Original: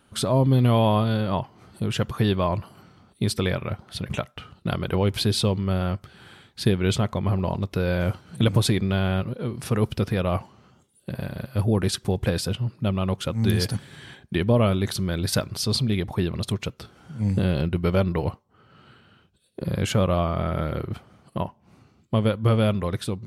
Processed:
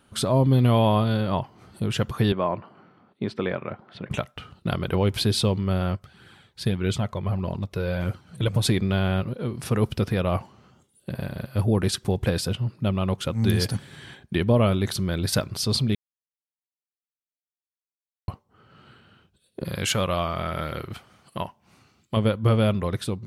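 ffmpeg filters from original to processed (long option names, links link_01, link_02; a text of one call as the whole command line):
ffmpeg -i in.wav -filter_complex "[0:a]asettb=1/sr,asplit=3[link_01][link_02][link_03];[link_01]atrim=end=2.324[link_04];[link_02]atrim=start=2.32:end=4.11,asetpts=PTS-STARTPTS,afade=type=in:duration=0.004:curve=qsin,afade=type=out:start_time=1.786:duration=0.004:curve=qsin,highpass=200,lowpass=2100[link_05];[link_03]atrim=start=4.106[link_06];[link_04][link_05]acrossfade=duration=0.004:curve1=hsin:curve2=qsin[link_07];[link_07][link_06]acrossfade=duration=0.004:curve1=qsin:curve2=hsin,asplit=3[link_08][link_09][link_10];[link_08]afade=type=out:start_time=5.95:duration=0.02[link_11];[link_09]flanger=delay=0.4:depth=1.8:regen=-38:speed=1.6:shape=triangular,afade=type=in:start_time=5.95:duration=0.02,afade=type=out:start_time=8.62:duration=0.02[link_12];[link_10]afade=type=in:start_time=8.62:duration=0.02[link_13];[link_11][link_12][link_13]amix=inputs=3:normalize=0,asettb=1/sr,asplit=3[link_14][link_15][link_16];[link_14]atrim=end=19.654[link_17];[link_15]atrim=start=19.65:end=22.17,asetpts=PTS-STARTPTS,afade=type=in:duration=0.004:curve=qsin,afade=type=out:start_time=2.516:duration=0.004:curve=qsin,tiltshelf=frequency=970:gain=-6[link_18];[link_16]atrim=start=22.166[link_19];[link_17][link_18]acrossfade=duration=0.004:curve1=hsin:curve2=qsin[link_20];[link_20][link_19]acrossfade=duration=0.004:curve1=qsin:curve2=hsin,asplit=3[link_21][link_22][link_23];[link_21]atrim=end=15.95,asetpts=PTS-STARTPTS,afade=type=out:start_time=15.946:duration=0.004:curve=hsin[link_24];[link_22]atrim=start=15.95:end=18.28,asetpts=PTS-STARTPTS,volume=0[link_25];[link_23]atrim=start=18.28,asetpts=PTS-STARTPTS,afade=type=in:duration=0.004:curve=hsin[link_26];[link_24][link_25][link_26]concat=n=3:v=0:a=1" out.wav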